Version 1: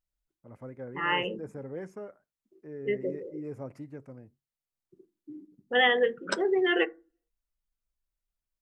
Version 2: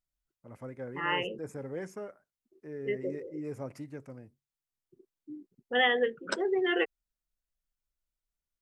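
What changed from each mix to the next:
first voice: add high-shelf EQ 2,200 Hz +10 dB
reverb: off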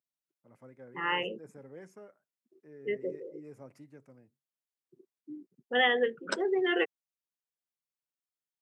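first voice −10.0 dB
master: add high-pass filter 120 Hz 24 dB per octave

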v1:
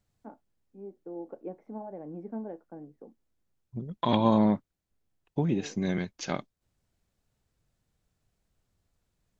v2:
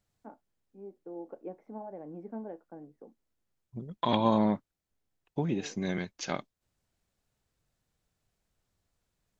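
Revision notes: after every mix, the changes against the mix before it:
master: add low-shelf EQ 360 Hz −5 dB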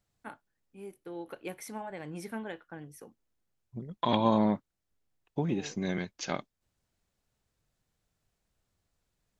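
first voice: remove Chebyshev band-pass filter 220–720 Hz, order 2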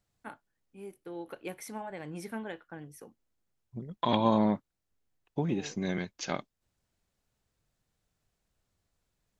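nothing changed

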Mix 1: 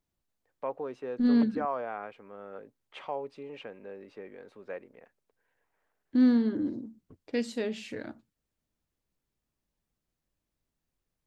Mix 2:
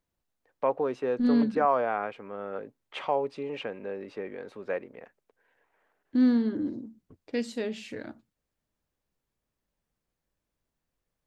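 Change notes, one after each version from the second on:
first voice +8.0 dB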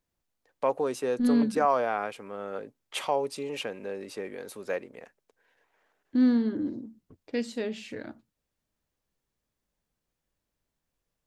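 first voice: remove low-pass filter 2,500 Hz 12 dB per octave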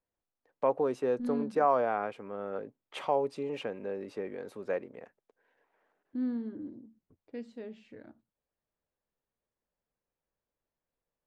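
second voice −10.5 dB
master: add low-pass filter 1,200 Hz 6 dB per octave

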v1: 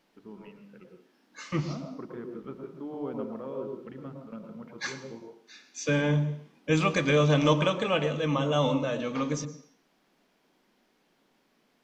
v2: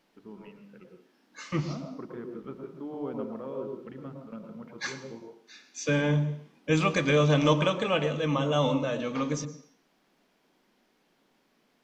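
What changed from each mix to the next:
nothing changed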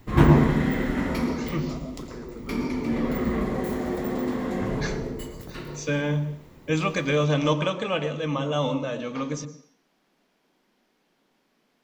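background: unmuted

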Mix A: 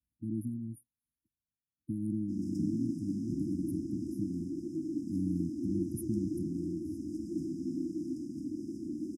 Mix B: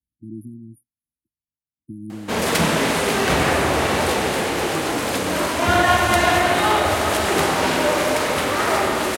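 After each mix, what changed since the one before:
background: remove resonant band-pass 430 Hz, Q 2.3
master: remove linear-phase brick-wall band-stop 340–4,900 Hz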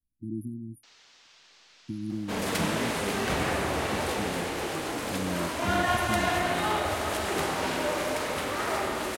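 first sound: unmuted
second sound −10.0 dB
master: remove high-pass filter 54 Hz

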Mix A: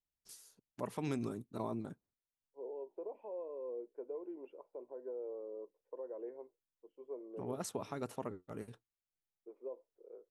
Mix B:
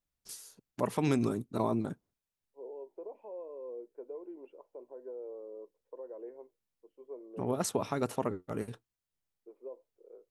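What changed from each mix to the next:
first voice +9.0 dB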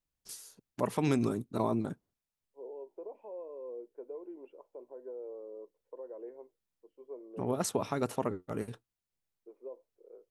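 nothing changed

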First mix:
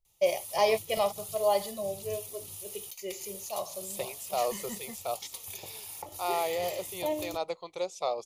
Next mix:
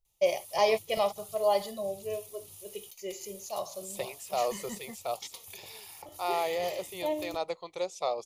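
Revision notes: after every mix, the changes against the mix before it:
second voice: add parametric band 1,800 Hz +4.5 dB 0.26 octaves
background −6.5 dB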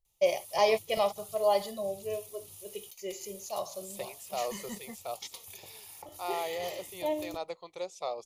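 second voice −4.5 dB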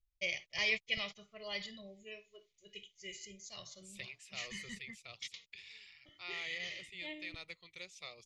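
background: muted
master: add drawn EQ curve 120 Hz 0 dB, 830 Hz −26 dB, 2,000 Hz +5 dB, 12,000 Hz −12 dB

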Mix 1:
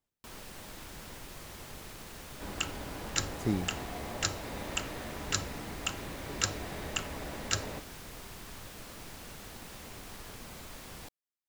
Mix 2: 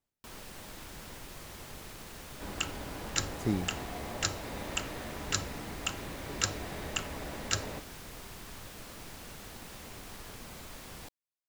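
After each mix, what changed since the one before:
nothing changed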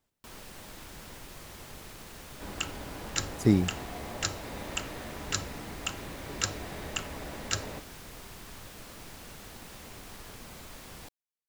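speech +8.5 dB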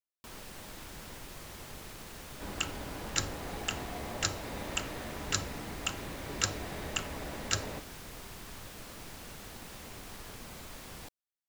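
speech: muted

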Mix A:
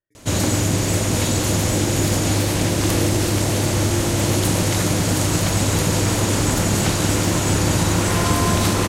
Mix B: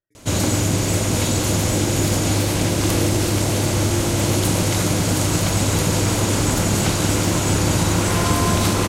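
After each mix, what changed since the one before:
master: add notch filter 1,800 Hz, Q 20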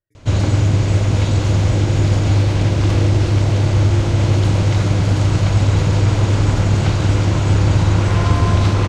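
first sound: add high-frequency loss of the air 140 metres
master: add low shelf with overshoot 150 Hz +6.5 dB, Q 1.5

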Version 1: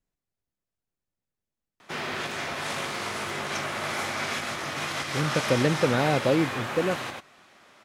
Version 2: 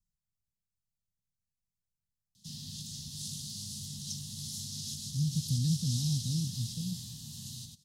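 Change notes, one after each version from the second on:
background: entry +0.55 s
master: add inverse Chebyshev band-stop filter 340–2,400 Hz, stop band 40 dB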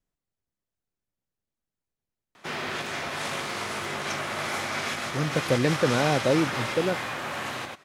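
master: remove inverse Chebyshev band-stop filter 340–2,400 Hz, stop band 40 dB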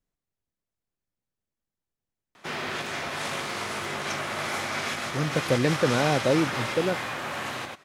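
nothing changed

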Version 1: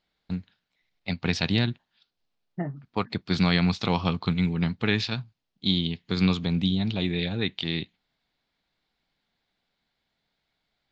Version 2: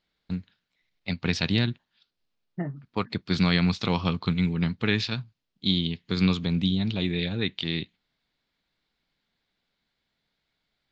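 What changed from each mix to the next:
master: add parametric band 760 Hz −4.5 dB 0.56 octaves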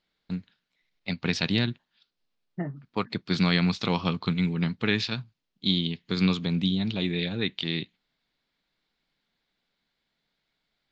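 master: add parametric band 76 Hz −15 dB 0.55 octaves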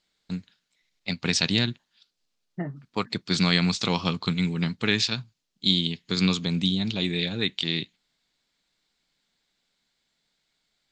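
master: remove high-frequency loss of the air 180 metres

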